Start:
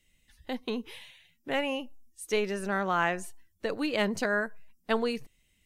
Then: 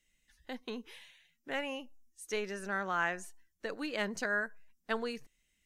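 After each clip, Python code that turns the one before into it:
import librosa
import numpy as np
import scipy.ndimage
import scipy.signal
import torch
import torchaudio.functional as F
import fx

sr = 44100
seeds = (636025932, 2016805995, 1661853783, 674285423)

y = fx.graphic_eq_15(x, sr, hz=(100, 1600, 6300), db=(-10, 6, 6))
y = y * 10.0 ** (-8.0 / 20.0)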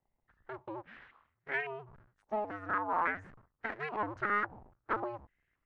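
y = fx.cycle_switch(x, sr, every=2, mode='inverted')
y = fx.filter_held_lowpass(y, sr, hz=3.6, low_hz=840.0, high_hz=1900.0)
y = y * 10.0 ** (-4.0 / 20.0)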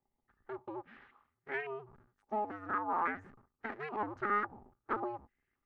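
y = fx.small_body(x, sr, hz=(250.0, 380.0, 820.0, 1200.0), ring_ms=45, db=9)
y = y * 10.0 ** (-5.0 / 20.0)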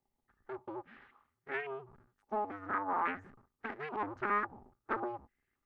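y = fx.doppler_dist(x, sr, depth_ms=0.23)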